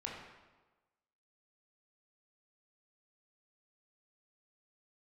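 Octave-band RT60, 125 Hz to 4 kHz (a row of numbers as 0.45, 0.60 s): 1.1, 1.2, 1.2, 1.2, 1.0, 0.90 s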